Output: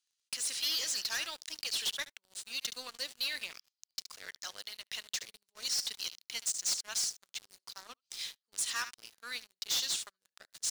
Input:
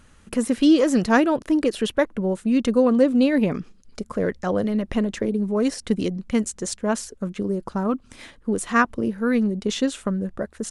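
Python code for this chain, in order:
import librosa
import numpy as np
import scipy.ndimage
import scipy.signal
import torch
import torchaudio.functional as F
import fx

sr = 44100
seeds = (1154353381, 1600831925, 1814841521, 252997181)

p1 = fx.ladder_bandpass(x, sr, hz=5400.0, resonance_pct=40)
p2 = p1 + fx.echo_single(p1, sr, ms=72, db=-16.0, dry=0)
y = fx.leveller(p2, sr, passes=5)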